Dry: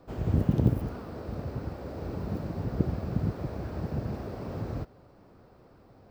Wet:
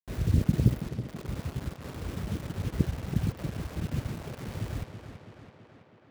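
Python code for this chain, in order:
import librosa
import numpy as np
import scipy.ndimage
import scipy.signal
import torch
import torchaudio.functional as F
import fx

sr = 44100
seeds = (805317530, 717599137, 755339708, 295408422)

y = fx.dereverb_blind(x, sr, rt60_s=1.6)
y = scipy.signal.sosfilt(scipy.signal.cheby1(2, 1.0, [640.0, 1800.0], 'bandstop', fs=sr, output='sos'), y)
y = fx.low_shelf(y, sr, hz=300.0, db=11.5)
y = fx.quant_dither(y, sr, seeds[0], bits=6, dither='none')
y = fx.echo_tape(y, sr, ms=329, feedback_pct=72, wet_db=-7.0, lp_hz=4900.0, drive_db=8.0, wow_cents=23)
y = y * librosa.db_to_amplitude(-6.5)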